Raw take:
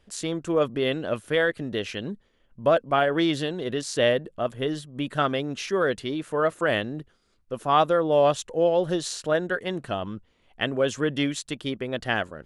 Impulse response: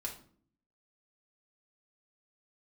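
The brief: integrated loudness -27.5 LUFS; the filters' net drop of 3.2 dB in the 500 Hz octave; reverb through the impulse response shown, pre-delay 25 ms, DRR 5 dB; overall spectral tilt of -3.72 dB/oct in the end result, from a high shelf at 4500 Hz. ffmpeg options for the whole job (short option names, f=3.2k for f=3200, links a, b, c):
-filter_complex "[0:a]equalizer=f=500:t=o:g=-4,highshelf=f=4.5k:g=7.5,asplit=2[a][b];[1:a]atrim=start_sample=2205,adelay=25[c];[b][c]afir=irnorm=-1:irlink=0,volume=-4.5dB[d];[a][d]amix=inputs=2:normalize=0,volume=-2dB"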